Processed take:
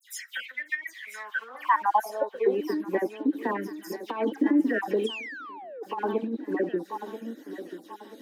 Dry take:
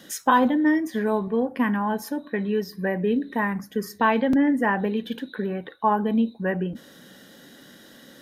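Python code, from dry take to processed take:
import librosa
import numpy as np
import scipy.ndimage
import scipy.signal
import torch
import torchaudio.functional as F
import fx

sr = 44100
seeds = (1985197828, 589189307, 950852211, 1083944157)

y = fx.spec_dropout(x, sr, seeds[0], share_pct=35)
y = fx.tilt_eq(y, sr, slope=2.0)
y = fx.echo_feedback(y, sr, ms=986, feedback_pct=41, wet_db=-11.5)
y = fx.spec_paint(y, sr, seeds[1], shape='fall', start_s=5.02, length_s=0.71, low_hz=430.0, high_hz=3400.0, level_db=-14.0)
y = fx.high_shelf(y, sr, hz=2300.0, db=-10.5)
y = fx.leveller(y, sr, passes=1)
y = fx.dispersion(y, sr, late='lows', ms=100.0, hz=3000.0)
y = fx.over_compress(y, sr, threshold_db=-22.0, ratio=-0.5)
y = fx.filter_sweep_highpass(y, sr, from_hz=2100.0, to_hz=320.0, start_s=1.12, end_s=2.67, q=6.8)
y = y * librosa.db_to_amplitude(-8.0)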